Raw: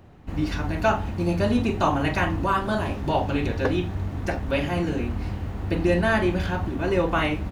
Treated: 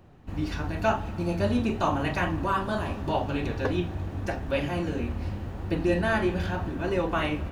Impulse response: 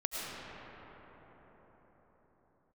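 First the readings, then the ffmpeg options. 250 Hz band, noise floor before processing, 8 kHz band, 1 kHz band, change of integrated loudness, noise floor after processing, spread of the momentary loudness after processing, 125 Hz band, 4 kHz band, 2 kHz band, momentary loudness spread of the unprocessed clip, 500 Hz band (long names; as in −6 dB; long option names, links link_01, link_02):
−3.5 dB, −34 dBFS, −4.0 dB, −3.5 dB, −3.5 dB, −37 dBFS, 7 LU, −4.0 dB, −3.5 dB, −4.0 dB, 7 LU, −3.5 dB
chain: -filter_complex "[0:a]flanger=delay=5.2:depth=8.8:regen=73:speed=0.88:shape=triangular,bandreject=frequency=2100:width=23,asplit=2[link_01][link_02];[1:a]atrim=start_sample=2205[link_03];[link_02][link_03]afir=irnorm=-1:irlink=0,volume=-21.5dB[link_04];[link_01][link_04]amix=inputs=2:normalize=0"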